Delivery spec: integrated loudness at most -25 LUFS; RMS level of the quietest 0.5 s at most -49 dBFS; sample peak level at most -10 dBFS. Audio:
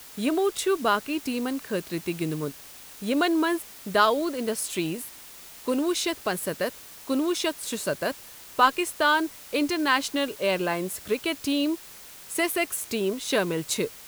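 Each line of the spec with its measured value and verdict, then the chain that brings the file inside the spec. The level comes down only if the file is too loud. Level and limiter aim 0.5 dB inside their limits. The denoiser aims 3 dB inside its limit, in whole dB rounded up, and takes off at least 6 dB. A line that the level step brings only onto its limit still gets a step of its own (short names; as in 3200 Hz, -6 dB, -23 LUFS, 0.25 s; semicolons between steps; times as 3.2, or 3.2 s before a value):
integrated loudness -26.5 LUFS: OK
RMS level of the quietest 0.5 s -45 dBFS: fail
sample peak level -6.5 dBFS: fail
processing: denoiser 7 dB, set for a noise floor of -45 dBFS; limiter -10.5 dBFS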